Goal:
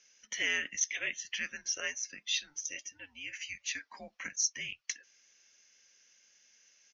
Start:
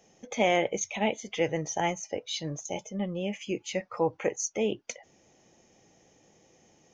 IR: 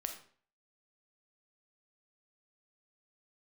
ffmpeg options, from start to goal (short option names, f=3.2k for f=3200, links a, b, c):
-af "asuperpass=centerf=5000:order=4:qfactor=0.62,afreqshift=-280,aresample=16000,aresample=44100,volume=2.5dB"